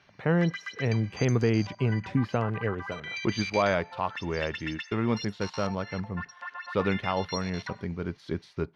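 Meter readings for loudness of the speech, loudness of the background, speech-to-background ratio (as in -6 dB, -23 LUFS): -30.0 LUFS, -39.0 LUFS, 9.0 dB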